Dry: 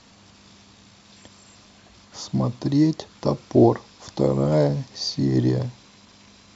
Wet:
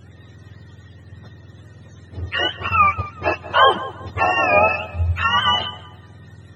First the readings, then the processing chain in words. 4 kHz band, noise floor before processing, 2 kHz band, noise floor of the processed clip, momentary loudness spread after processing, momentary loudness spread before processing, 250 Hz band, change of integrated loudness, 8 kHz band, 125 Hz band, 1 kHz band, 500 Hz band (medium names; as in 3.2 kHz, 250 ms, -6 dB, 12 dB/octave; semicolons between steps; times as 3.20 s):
+12.5 dB, -52 dBFS, +24.0 dB, -45 dBFS, 12 LU, 12 LU, -13.0 dB, +4.0 dB, no reading, -3.5 dB, +16.0 dB, 0.0 dB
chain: spectrum inverted on a logarithmic axis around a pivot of 610 Hz; tape echo 187 ms, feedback 36%, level -14.5 dB, low-pass 1.8 kHz; trim +6 dB